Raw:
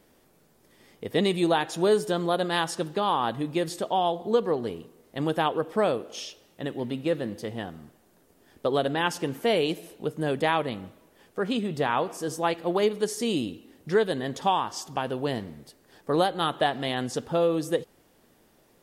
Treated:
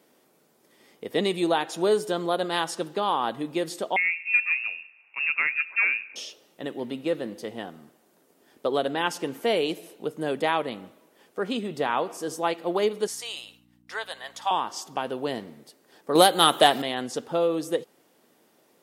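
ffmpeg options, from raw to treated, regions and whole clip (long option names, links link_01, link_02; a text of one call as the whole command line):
ffmpeg -i in.wav -filter_complex "[0:a]asettb=1/sr,asplit=3[link_01][link_02][link_03];[link_01]atrim=end=3.964[link_04];[link_02]atrim=start=3.96:end=6.16,asetpts=PTS-STARTPTS,afade=type=in:duration=0.004:curve=qsin,afade=type=out:start_time=2.196:duration=0.004:curve=qsin,highpass=41,acrusher=bits=6:mode=log:mix=0:aa=0.000001,lowpass=frequency=2500:width_type=q:width=0.5098,lowpass=frequency=2500:width_type=q:width=0.6013,lowpass=frequency=2500:width_type=q:width=0.9,lowpass=frequency=2500:width_type=q:width=2.563,afreqshift=-2900[link_05];[link_03]atrim=start=6.156[link_06];[link_04][link_05]acrossfade=duration=0.004:curve1=hsin:curve2=qsin[link_07];[link_07][link_06]acrossfade=duration=0.004:curve1=qsin:curve2=hsin,asettb=1/sr,asplit=3[link_08][link_09][link_10];[link_08]atrim=end=13.074[link_11];[link_09]atrim=start=13.07:end=14.51,asetpts=PTS-STARTPTS,afade=type=in:duration=0.004:curve=qsin,afade=type=out:start_time=1.436:duration=0.004:curve=qsin,highpass=frequency=760:width=0.5412,highpass=frequency=760:width=1.3066,agate=range=-33dB:threshold=-56dB:ratio=3:release=100:detection=peak,aeval=exprs='val(0)+0.00316*(sin(2*PI*60*n/s)+sin(2*PI*2*60*n/s)/2+sin(2*PI*3*60*n/s)/3+sin(2*PI*4*60*n/s)/4+sin(2*PI*5*60*n/s)/5)':channel_layout=same[link_12];[link_10]atrim=start=14.506[link_13];[link_11][link_12]acrossfade=duration=0.004:curve1=hsin:curve2=qsin[link_14];[link_14][link_13]acrossfade=duration=0.004:curve1=qsin:curve2=hsin,asettb=1/sr,asplit=3[link_15][link_16][link_17];[link_15]atrim=end=16.154[link_18];[link_16]atrim=start=16.15:end=16.82,asetpts=PTS-STARTPTS,afade=type=in:duration=0.004:curve=qsin,afade=type=out:start_time=0.666:duration=0.004:curve=qsin,aemphasis=mode=production:type=75kf,acontrast=65[link_19];[link_17]atrim=start=16.816[link_20];[link_18][link_19]acrossfade=duration=0.004:curve1=hsin:curve2=qsin[link_21];[link_21][link_20]acrossfade=duration=0.004:curve1=qsin:curve2=hsin,highpass=220,bandreject=frequency=1700:width=27" out.wav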